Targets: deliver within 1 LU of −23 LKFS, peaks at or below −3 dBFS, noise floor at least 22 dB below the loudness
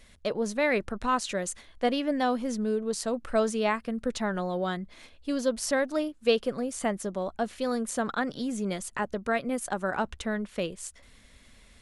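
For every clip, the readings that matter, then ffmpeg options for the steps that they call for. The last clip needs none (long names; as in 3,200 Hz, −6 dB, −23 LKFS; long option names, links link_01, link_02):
integrated loudness −30.0 LKFS; sample peak −11.5 dBFS; target loudness −23.0 LKFS
→ -af "volume=7dB"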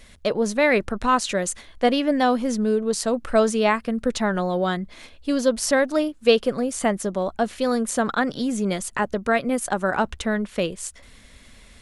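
integrated loudness −23.0 LKFS; sample peak −4.5 dBFS; background noise floor −49 dBFS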